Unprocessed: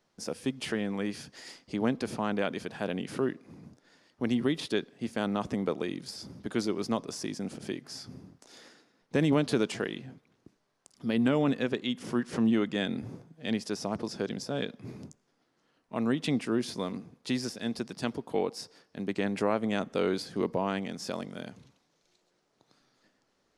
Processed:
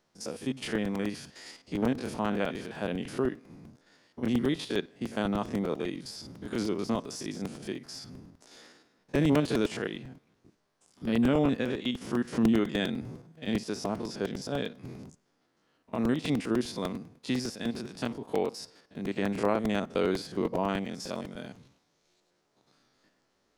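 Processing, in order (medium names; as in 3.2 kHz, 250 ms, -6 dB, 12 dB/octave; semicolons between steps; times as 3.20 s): spectrogram pixelated in time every 50 ms; crackling interface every 0.10 s, samples 128, repeat, from 0.65 s; trim +1.5 dB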